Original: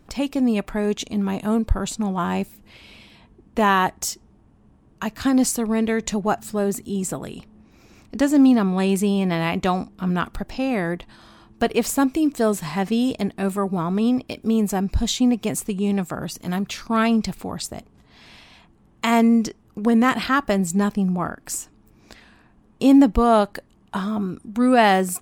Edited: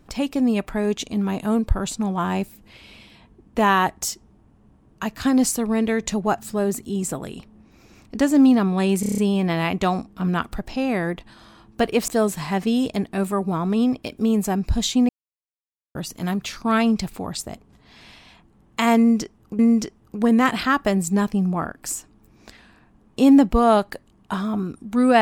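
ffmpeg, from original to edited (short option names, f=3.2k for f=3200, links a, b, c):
-filter_complex "[0:a]asplit=11[a][b][c][d][e][f][g][h][i][j][k];[a]atrim=end=9.032[l];[b]atrim=start=8.998:end=9.032[m];[c]atrim=start=8.998:end=9.032[n];[d]atrim=start=8.998:end=9.032[o];[e]atrim=start=8.998:end=9.032[p];[f]atrim=start=8.998:end=9.032[q];[g]atrim=start=8.998:end=11.902[r];[h]atrim=start=12.328:end=15.34,asetpts=PTS-STARTPTS,afade=t=out:st=3.008:d=0.004:c=hsin[s];[i]atrim=start=15.34:end=16.2,asetpts=PTS-STARTPTS,volume=0[t];[j]atrim=start=16.2:end=19.842,asetpts=PTS-STARTPTS,afade=t=in:d=0.004:c=hsin[u];[k]atrim=start=19.218[v];[l][m]acrossfade=d=0.004:c1=hsin:c2=hsin[w];[w][n]acrossfade=d=0.004:c1=hsin:c2=hsin[x];[x][o]acrossfade=d=0.004:c1=hsin:c2=hsin[y];[y][p]acrossfade=d=0.004:c1=hsin:c2=hsin[z];[z][q]acrossfade=d=0.004:c1=hsin:c2=hsin[aa];[aa][r]acrossfade=d=0.004:c1=hsin:c2=hsin[ab];[s][t][u]concat=n=3:v=0:a=1[ac];[ab][ac]acrossfade=d=0.004:c1=hsin:c2=hsin[ad];[ad][v]acrossfade=d=0.004:c1=hsin:c2=hsin"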